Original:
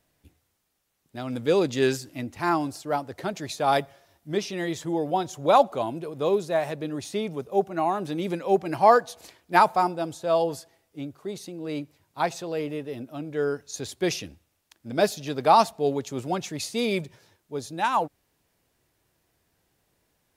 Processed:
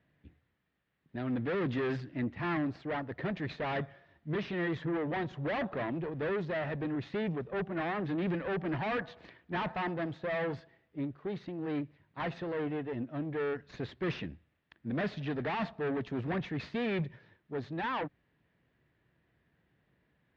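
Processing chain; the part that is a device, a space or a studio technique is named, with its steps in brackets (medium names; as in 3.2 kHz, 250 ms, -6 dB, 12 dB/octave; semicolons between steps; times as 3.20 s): guitar amplifier (valve stage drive 32 dB, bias 0.7; tone controls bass +10 dB, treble -7 dB; cabinet simulation 77–3700 Hz, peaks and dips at 93 Hz -9 dB, 810 Hz -3 dB, 1.8 kHz +8 dB)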